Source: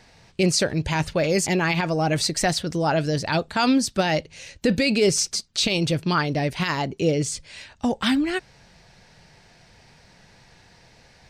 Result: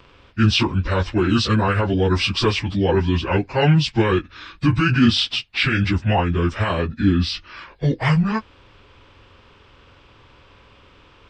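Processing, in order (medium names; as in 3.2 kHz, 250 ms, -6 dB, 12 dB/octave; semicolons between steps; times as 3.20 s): frequency-domain pitch shifter -9 st; trim +5 dB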